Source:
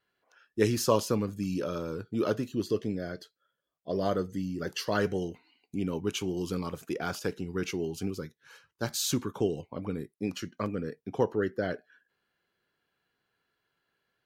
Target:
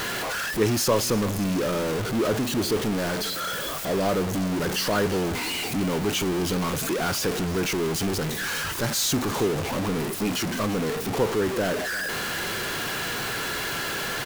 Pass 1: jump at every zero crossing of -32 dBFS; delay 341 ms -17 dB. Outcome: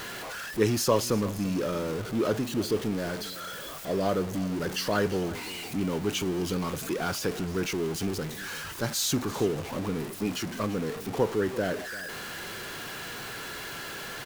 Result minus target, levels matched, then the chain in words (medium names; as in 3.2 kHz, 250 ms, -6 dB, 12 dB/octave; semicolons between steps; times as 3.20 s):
jump at every zero crossing: distortion -6 dB
jump at every zero crossing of -23 dBFS; delay 341 ms -17 dB